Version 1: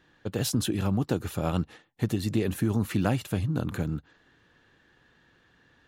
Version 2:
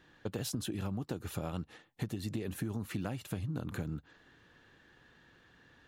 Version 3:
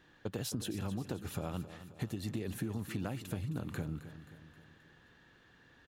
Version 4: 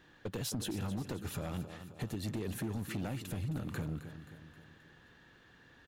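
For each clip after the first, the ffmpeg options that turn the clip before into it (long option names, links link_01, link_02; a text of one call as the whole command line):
ffmpeg -i in.wav -af "acompressor=threshold=-34dB:ratio=6" out.wav
ffmpeg -i in.wav -af "aecho=1:1:265|530|795|1060|1325:0.224|0.119|0.0629|0.0333|0.0177,volume=-1dB" out.wav
ffmpeg -i in.wav -af "asoftclip=type=hard:threshold=-34dB,volume=2dB" out.wav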